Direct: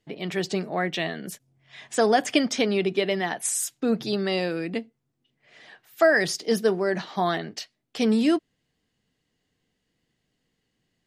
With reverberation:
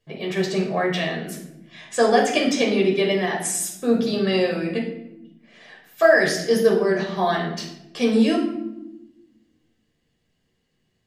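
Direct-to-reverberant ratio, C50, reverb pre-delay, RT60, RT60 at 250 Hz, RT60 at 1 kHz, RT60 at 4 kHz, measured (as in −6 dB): −1.0 dB, 5.5 dB, 13 ms, 0.90 s, 1.5 s, 0.80 s, 0.55 s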